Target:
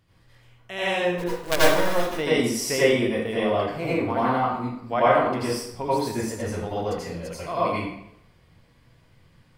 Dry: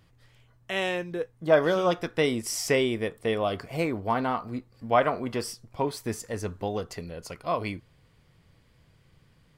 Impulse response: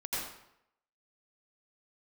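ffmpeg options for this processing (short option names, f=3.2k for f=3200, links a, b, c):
-filter_complex "[0:a]asettb=1/sr,asplit=3[a][b][c];[a]atrim=end=1.184[d];[b]atrim=start=1.18:end=2.15,asetpts=PTS-STARTPTS,afade=t=in:d=0.004:c=qsin,afade=t=out:st=0.966:d=0.004:c=qsin,acrusher=bits=3:dc=4:mix=0:aa=0.000001[e];[c]atrim=start=2.146[f];[d][e]acrossfade=d=0.004:c1=hsin:c2=qsin[g];[g][f]acrossfade=d=0.004:c1=qsin:c2=hsin,asettb=1/sr,asplit=3[h][i][j];[h]atrim=end=3.354[k];[i]atrim=start=3.35:end=4,asetpts=PTS-STARTPTS,afade=t=in:d=0.004:c=qsin,afade=t=out:st=0.646:d=0.004:c=qsin,highshelf=f=4.2k:g=-6[l];[j]atrim=start=3.996[m];[k][l]acrossfade=d=0.004:c1=hsin:c2=qsin[n];[n][m]acrossfade=d=0.004:c1=qsin:c2=hsin[o];[1:a]atrim=start_sample=2205[p];[o][p]afir=irnorm=-1:irlink=0"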